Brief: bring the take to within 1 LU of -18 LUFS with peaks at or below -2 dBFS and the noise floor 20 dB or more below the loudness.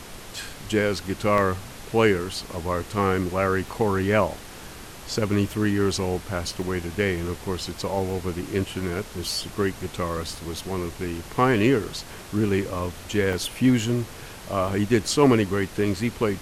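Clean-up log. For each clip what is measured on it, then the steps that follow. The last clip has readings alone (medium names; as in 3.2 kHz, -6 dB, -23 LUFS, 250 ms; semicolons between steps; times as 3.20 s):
dropouts 6; longest dropout 1.4 ms; noise floor -41 dBFS; noise floor target -45 dBFS; loudness -25.0 LUFS; peak level -5.0 dBFS; loudness target -18.0 LUFS
-> interpolate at 1.38/6.62/8.10/10.35/13.33/14.68 s, 1.4 ms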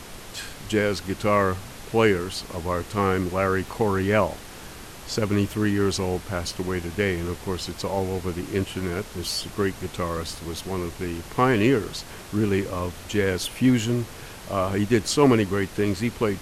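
dropouts 0; noise floor -41 dBFS; noise floor target -45 dBFS
-> noise print and reduce 6 dB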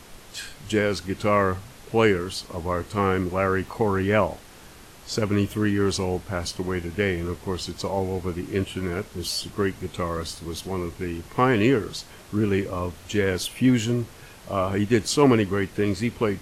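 noise floor -46 dBFS; loudness -25.0 LUFS; peak level -5.0 dBFS; loudness target -18.0 LUFS
-> trim +7 dB; peak limiter -2 dBFS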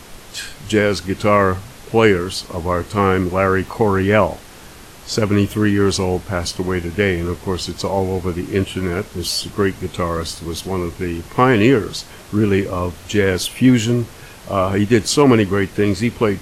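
loudness -18.0 LUFS; peak level -2.0 dBFS; noise floor -39 dBFS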